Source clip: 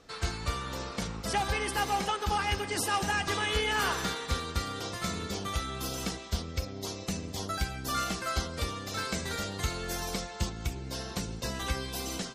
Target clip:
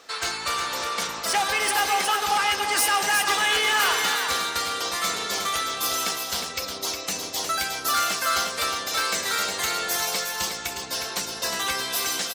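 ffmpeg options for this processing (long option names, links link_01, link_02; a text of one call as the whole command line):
ffmpeg -i in.wav -filter_complex "[0:a]acontrast=40,asplit=2[link_01][link_02];[link_02]highpass=frequency=720:poles=1,volume=13dB,asoftclip=type=tanh:threshold=-11dB[link_03];[link_01][link_03]amix=inputs=2:normalize=0,lowpass=frequency=1800:poles=1,volume=-6dB,aemphasis=mode=production:type=riaa,aecho=1:1:313|360:0.106|0.501,volume=-2dB" out.wav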